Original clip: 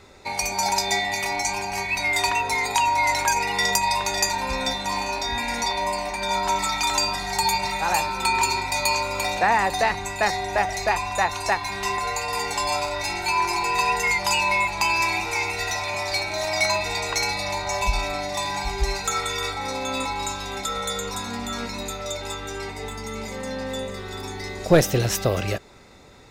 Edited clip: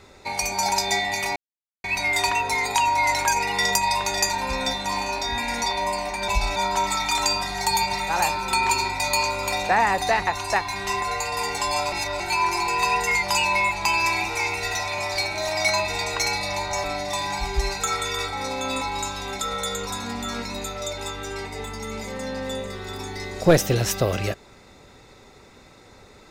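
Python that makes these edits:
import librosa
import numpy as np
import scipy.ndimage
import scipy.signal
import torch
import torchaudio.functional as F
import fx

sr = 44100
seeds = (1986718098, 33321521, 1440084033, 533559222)

y = fx.edit(x, sr, fx.silence(start_s=1.36, length_s=0.48),
    fx.cut(start_s=9.99, length_s=1.24),
    fx.reverse_span(start_s=12.88, length_s=0.28),
    fx.move(start_s=17.8, length_s=0.28, to_s=6.28), tone=tone)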